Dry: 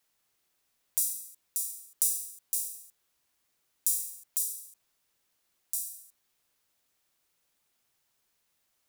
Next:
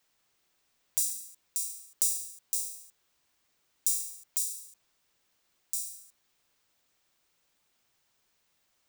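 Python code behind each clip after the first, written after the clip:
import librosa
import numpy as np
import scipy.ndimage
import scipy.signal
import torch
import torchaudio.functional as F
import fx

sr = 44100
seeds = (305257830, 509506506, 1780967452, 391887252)

y = fx.peak_eq(x, sr, hz=12000.0, db=-13.5, octaves=0.41)
y = y * librosa.db_to_amplitude(3.5)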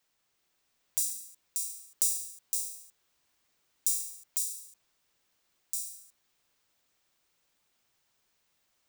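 y = fx.rider(x, sr, range_db=10, speed_s=2.0)
y = y * librosa.db_to_amplitude(-1.0)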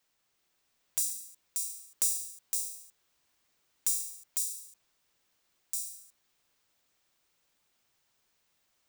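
y = 10.0 ** (-12.0 / 20.0) * np.tanh(x / 10.0 ** (-12.0 / 20.0))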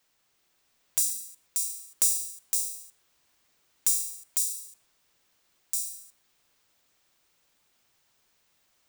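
y = x + 10.0 ** (-24.0 / 20.0) * np.pad(x, (int(119 * sr / 1000.0), 0))[:len(x)]
y = y * librosa.db_to_amplitude(5.0)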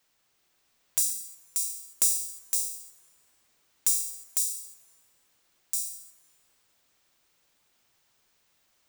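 y = fx.rev_plate(x, sr, seeds[0], rt60_s=3.7, hf_ratio=0.45, predelay_ms=0, drr_db=15.5)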